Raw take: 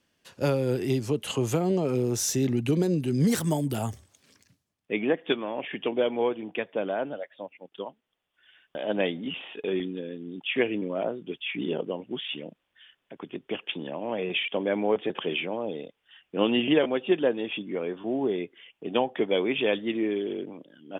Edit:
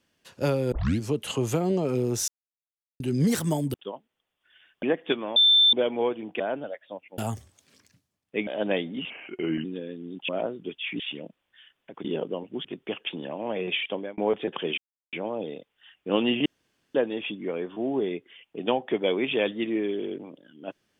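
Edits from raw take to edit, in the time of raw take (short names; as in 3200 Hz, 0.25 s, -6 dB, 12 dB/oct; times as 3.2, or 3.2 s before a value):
0.72 tape start 0.29 s
2.28–3 mute
3.74–5.03 swap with 7.67–8.76
5.56–5.93 bleep 3550 Hz -14.5 dBFS
6.6–6.89 cut
9.39–9.86 speed 86%
10.5–10.91 cut
11.62–12.22 move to 13.27
14.49–14.8 fade out
15.4 insert silence 0.35 s
16.73–17.22 room tone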